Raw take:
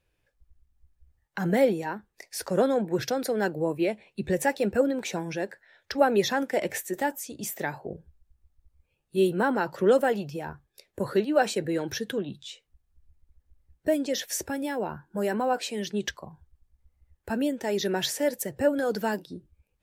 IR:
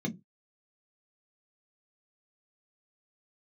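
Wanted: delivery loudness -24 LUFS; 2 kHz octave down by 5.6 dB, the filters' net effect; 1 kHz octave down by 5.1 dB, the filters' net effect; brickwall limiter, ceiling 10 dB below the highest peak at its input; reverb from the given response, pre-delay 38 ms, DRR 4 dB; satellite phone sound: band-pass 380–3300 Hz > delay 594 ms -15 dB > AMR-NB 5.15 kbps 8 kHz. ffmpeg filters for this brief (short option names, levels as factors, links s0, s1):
-filter_complex "[0:a]equalizer=f=1000:t=o:g=-6,equalizer=f=2000:t=o:g=-4.5,alimiter=limit=0.0944:level=0:latency=1,asplit=2[s0][s1];[1:a]atrim=start_sample=2205,adelay=38[s2];[s1][s2]afir=irnorm=-1:irlink=0,volume=0.447[s3];[s0][s3]amix=inputs=2:normalize=0,highpass=380,lowpass=3300,aecho=1:1:594:0.178,volume=2" -ar 8000 -c:a libopencore_amrnb -b:a 5150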